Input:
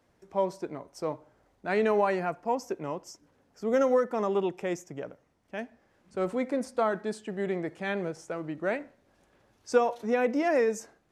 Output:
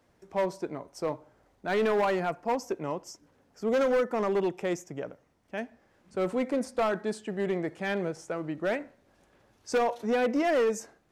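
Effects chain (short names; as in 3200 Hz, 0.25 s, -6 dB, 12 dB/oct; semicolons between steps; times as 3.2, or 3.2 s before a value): overloaded stage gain 23 dB; gain +1.5 dB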